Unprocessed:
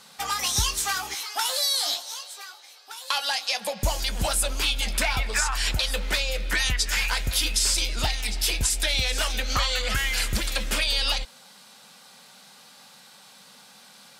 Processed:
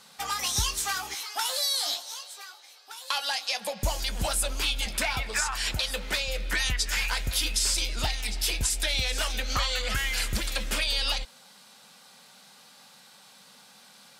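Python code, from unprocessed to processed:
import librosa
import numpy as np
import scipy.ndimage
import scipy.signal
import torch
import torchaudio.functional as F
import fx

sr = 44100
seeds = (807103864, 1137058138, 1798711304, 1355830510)

y = fx.highpass(x, sr, hz=52.0, slope=12, at=(4.86, 6.28))
y = y * librosa.db_to_amplitude(-3.0)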